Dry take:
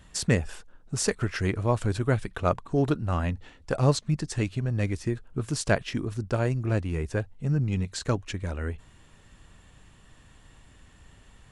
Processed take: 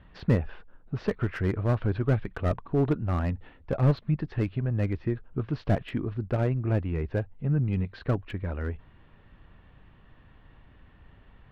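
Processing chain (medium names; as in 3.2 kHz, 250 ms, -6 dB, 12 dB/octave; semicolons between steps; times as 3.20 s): Bessel low-pass 2.1 kHz, order 8; slew-rate limiter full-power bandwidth 45 Hz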